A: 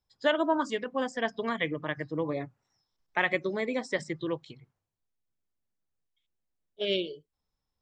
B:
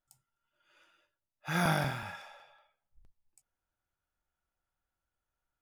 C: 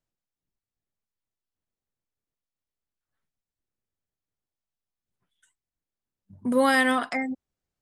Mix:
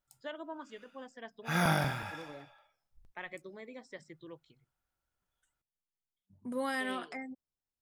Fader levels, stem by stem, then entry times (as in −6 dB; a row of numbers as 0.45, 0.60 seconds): −17.0, +0.5, −14.0 decibels; 0.00, 0.00, 0.00 seconds